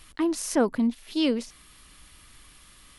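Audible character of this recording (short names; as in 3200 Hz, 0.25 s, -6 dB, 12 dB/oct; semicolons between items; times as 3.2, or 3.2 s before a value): noise floor -54 dBFS; spectral tilt -3.5 dB/oct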